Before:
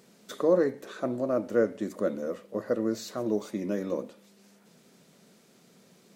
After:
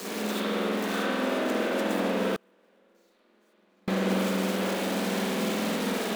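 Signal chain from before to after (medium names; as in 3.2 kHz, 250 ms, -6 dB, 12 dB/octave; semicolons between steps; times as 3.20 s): one-bit comparator; steep high-pass 180 Hz 96 dB/octave; in parallel at -8.5 dB: saturation -34.5 dBFS, distortion -9 dB; on the sum: delay with an opening low-pass 245 ms, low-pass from 400 Hz, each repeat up 2 oct, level -3 dB; spring tank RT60 1.9 s, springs 47 ms, chirp 30 ms, DRR -8.5 dB; 2.35–3.88 s: inverted gate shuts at -15 dBFS, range -36 dB; trim -8 dB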